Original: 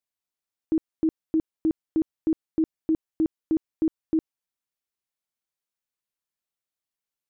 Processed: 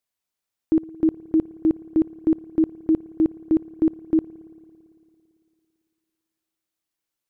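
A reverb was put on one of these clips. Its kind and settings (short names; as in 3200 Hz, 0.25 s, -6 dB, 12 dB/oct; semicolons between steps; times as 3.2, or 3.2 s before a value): spring tank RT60 2.6 s, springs 56 ms, chirp 80 ms, DRR 16.5 dB; gain +5 dB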